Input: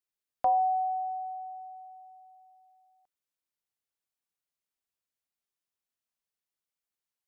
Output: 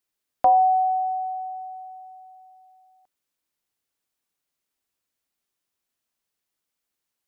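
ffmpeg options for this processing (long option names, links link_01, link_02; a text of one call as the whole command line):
ffmpeg -i in.wav -af "equalizer=frequency=290:width_type=o:width=0.77:gain=3.5,volume=8dB" out.wav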